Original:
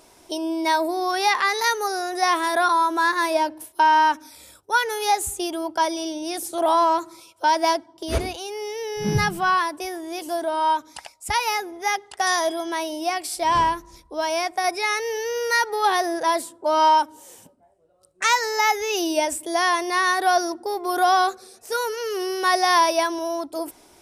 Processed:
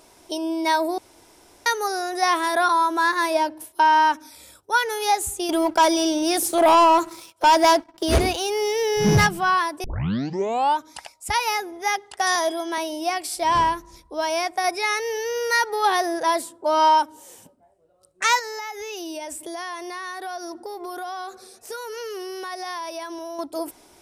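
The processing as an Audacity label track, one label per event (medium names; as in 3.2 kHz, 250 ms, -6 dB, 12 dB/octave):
0.980000	1.660000	room tone
5.490000	9.270000	waveshaping leveller passes 2
9.840000	9.840000	tape start 0.93 s
12.350000	12.780000	high-pass 220 Hz 24 dB/octave
18.390000	23.390000	compression, threshold -30 dBFS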